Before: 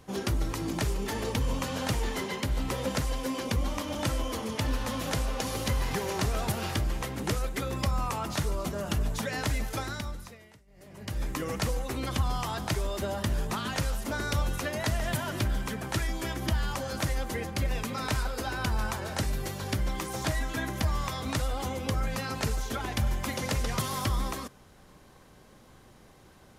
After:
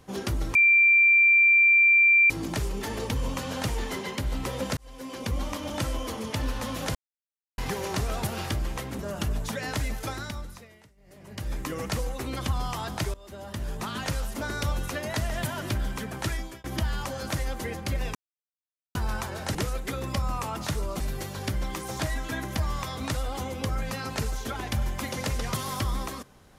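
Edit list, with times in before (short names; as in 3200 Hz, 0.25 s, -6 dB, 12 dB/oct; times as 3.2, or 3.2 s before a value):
0.55 add tone 2360 Hz -15 dBFS 1.75 s
3.02–3.63 fade in
5.2–5.83 mute
7.24–8.69 move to 19.25
12.84–13.68 fade in, from -21.5 dB
16.04–16.34 fade out
17.85–18.65 mute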